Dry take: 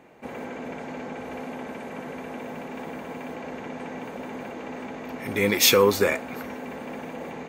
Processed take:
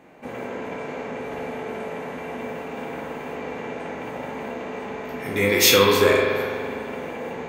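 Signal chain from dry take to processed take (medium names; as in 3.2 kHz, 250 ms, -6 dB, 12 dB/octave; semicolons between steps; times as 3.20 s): spectral sustain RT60 0.36 s; spring tank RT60 1.9 s, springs 41 ms, chirp 40 ms, DRR 0 dB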